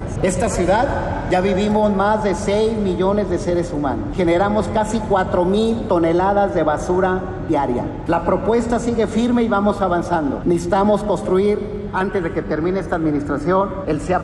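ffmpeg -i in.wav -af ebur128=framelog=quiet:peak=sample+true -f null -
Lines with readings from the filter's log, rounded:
Integrated loudness:
  I:         -18.5 LUFS
  Threshold: -28.4 LUFS
Loudness range:
  LRA:         1.4 LU
  Threshold: -38.3 LUFS
  LRA low:   -19.1 LUFS
  LRA high:  -17.7 LUFS
Sample peak:
  Peak:       -5.2 dBFS
True peak:
  Peak:       -5.2 dBFS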